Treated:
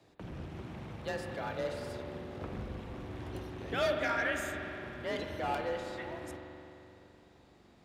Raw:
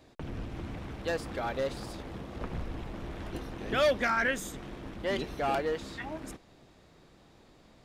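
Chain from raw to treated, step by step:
spring reverb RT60 3.1 s, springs 42 ms, chirp 40 ms, DRR 2.5 dB
frequency shifter +35 Hz
level −5.5 dB

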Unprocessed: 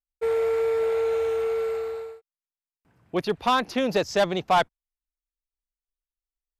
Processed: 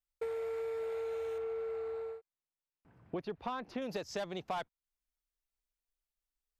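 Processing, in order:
0:01.38–0:03.82: low-pass filter 1,700 Hz 6 dB per octave
downward compressor 6 to 1, threshold −37 dBFS, peak gain reduction 18 dB

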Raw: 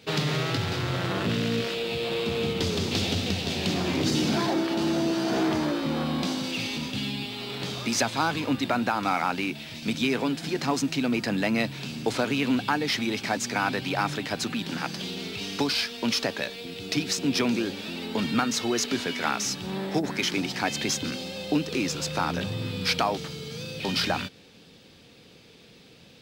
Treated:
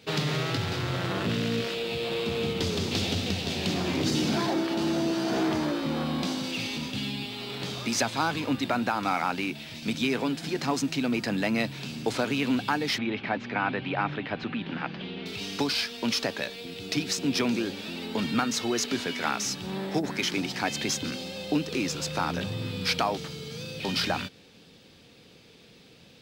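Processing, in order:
0:12.98–0:15.26: low-pass filter 3,100 Hz 24 dB per octave
level −1.5 dB

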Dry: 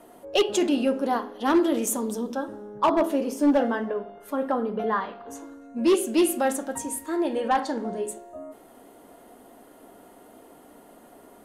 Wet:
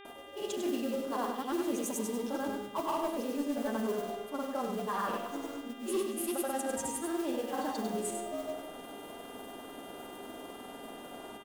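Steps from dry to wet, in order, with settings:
parametric band 2,000 Hz −10 dB 0.25 octaves
reversed playback
downward compressor 6 to 1, threshold −36 dBFS, peak gain reduction 17.5 dB
reversed playback
noise that follows the level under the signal 17 dB
granular cloud, pitch spread up and down by 0 semitones
hum with harmonics 400 Hz, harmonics 9, −56 dBFS −3 dB per octave
single-tap delay 99 ms −6.5 dB
on a send at −11.5 dB: convolution reverb RT60 1.3 s, pre-delay 37 ms
on the sum: level +4 dB

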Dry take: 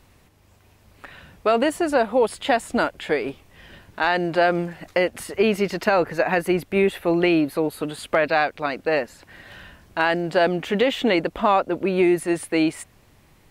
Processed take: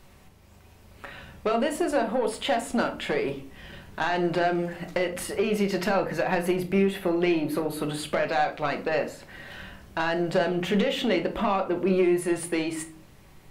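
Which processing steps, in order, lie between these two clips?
downward compressor, threshold −21 dBFS, peak gain reduction 8 dB
soft clipping −17.5 dBFS, distortion −18 dB
rectangular room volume 340 cubic metres, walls furnished, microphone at 1.1 metres

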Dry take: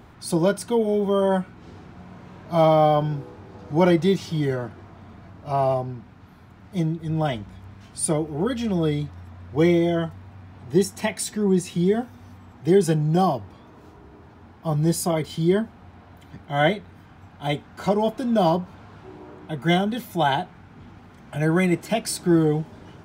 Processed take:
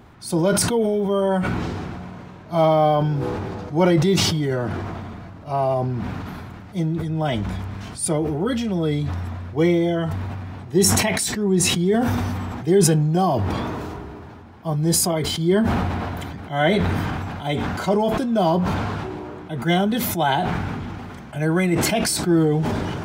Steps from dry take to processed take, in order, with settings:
level that may fall only so fast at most 21 dB per second

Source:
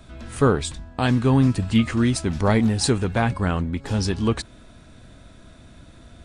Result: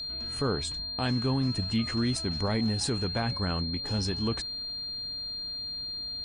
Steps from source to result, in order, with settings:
steady tone 4,200 Hz −26 dBFS
brickwall limiter −11.5 dBFS, peak gain reduction 5.5 dB
level −7.5 dB

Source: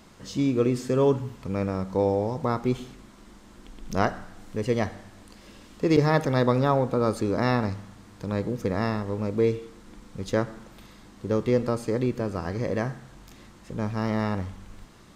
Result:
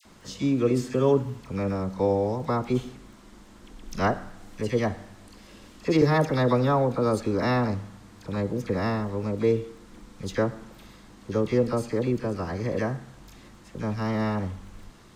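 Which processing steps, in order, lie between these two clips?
surface crackle 13 per second −47 dBFS
all-pass dispersion lows, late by 53 ms, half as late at 1,400 Hz

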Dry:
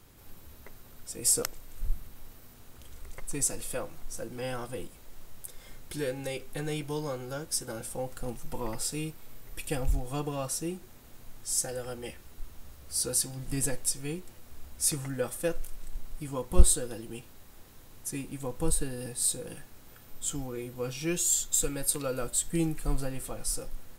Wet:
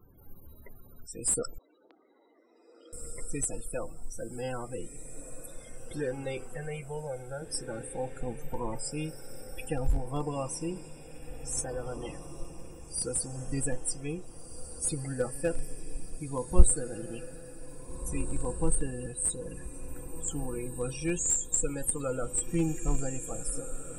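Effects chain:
0:06.55–0:07.42: phaser with its sweep stopped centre 1,100 Hz, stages 6
spectral peaks only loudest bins 32
on a send: feedback delay with all-pass diffusion 1,762 ms, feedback 50%, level −11 dB
on the sum: dynamic equaliser 910 Hz, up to +3 dB, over −55 dBFS, Q 5.7
in parallel at −11 dB: comparator with hysteresis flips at −22 dBFS
0:01.58–0:02.93: on the sum: Chebyshev band-pass filter 300–4,500 Hz, order 4

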